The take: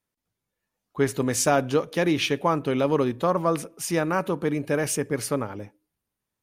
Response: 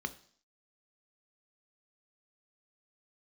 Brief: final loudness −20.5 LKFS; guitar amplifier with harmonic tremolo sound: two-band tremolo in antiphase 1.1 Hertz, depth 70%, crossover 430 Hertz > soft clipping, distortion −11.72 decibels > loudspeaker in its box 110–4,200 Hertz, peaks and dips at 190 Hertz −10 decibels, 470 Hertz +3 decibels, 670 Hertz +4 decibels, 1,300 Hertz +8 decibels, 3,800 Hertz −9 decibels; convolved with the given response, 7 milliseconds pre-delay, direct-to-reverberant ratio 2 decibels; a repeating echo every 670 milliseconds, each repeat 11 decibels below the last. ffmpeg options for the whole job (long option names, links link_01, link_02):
-filter_complex "[0:a]aecho=1:1:670|1340|2010:0.282|0.0789|0.0221,asplit=2[link_01][link_02];[1:a]atrim=start_sample=2205,adelay=7[link_03];[link_02][link_03]afir=irnorm=-1:irlink=0,volume=-4.5dB[link_04];[link_01][link_04]amix=inputs=2:normalize=0,acrossover=split=430[link_05][link_06];[link_05]aeval=exprs='val(0)*(1-0.7/2+0.7/2*cos(2*PI*1.1*n/s))':channel_layout=same[link_07];[link_06]aeval=exprs='val(0)*(1-0.7/2-0.7/2*cos(2*PI*1.1*n/s))':channel_layout=same[link_08];[link_07][link_08]amix=inputs=2:normalize=0,asoftclip=threshold=-22dB,highpass=110,equalizer=frequency=190:width_type=q:width=4:gain=-10,equalizer=frequency=470:width_type=q:width=4:gain=3,equalizer=frequency=670:width_type=q:width=4:gain=4,equalizer=frequency=1300:width_type=q:width=4:gain=8,equalizer=frequency=3800:width_type=q:width=4:gain=-9,lowpass=frequency=4200:width=0.5412,lowpass=frequency=4200:width=1.3066,volume=7.5dB"